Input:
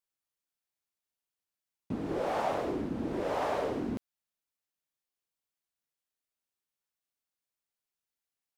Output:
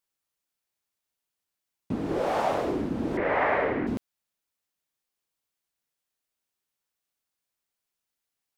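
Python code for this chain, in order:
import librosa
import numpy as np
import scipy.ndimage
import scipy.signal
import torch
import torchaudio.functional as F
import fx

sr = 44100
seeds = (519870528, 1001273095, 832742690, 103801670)

y = fx.lowpass_res(x, sr, hz=2000.0, q=4.4, at=(3.17, 3.87))
y = y * librosa.db_to_amplitude(5.0)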